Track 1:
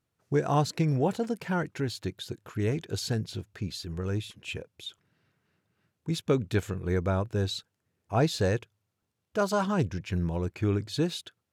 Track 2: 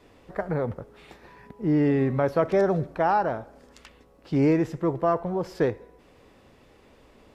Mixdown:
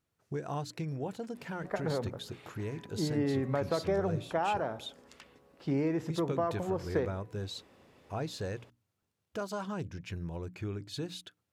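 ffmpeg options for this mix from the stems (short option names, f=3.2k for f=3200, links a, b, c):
-filter_complex "[0:a]acompressor=threshold=-39dB:ratio=2,volume=-1.5dB[a];[1:a]highpass=75,acompressor=threshold=-22dB:ratio=6,adelay=1350,volume=-4.5dB[b];[a][b]amix=inputs=2:normalize=0,bandreject=f=60:t=h:w=6,bandreject=f=120:t=h:w=6,bandreject=f=180:t=h:w=6,bandreject=f=240:t=h:w=6,bandreject=f=300:t=h:w=6"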